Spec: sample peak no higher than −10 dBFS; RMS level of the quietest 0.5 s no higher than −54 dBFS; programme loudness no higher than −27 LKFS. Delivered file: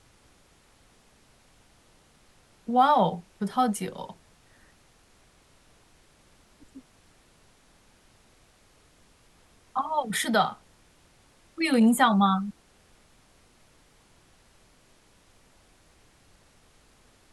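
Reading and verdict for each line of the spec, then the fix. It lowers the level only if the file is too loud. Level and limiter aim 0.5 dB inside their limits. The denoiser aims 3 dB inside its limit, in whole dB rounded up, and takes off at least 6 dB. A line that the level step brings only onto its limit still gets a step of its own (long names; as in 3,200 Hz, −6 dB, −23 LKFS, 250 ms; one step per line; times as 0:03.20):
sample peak −7.5 dBFS: out of spec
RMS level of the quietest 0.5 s −60 dBFS: in spec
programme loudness −25.0 LKFS: out of spec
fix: level −2.5 dB
brickwall limiter −10.5 dBFS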